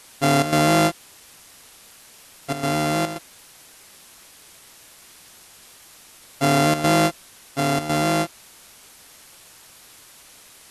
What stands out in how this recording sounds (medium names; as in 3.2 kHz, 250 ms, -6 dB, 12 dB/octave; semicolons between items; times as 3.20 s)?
a buzz of ramps at a fixed pitch in blocks of 64 samples; chopped level 1.9 Hz, depth 65%, duty 80%; a quantiser's noise floor 8-bit, dither triangular; MP2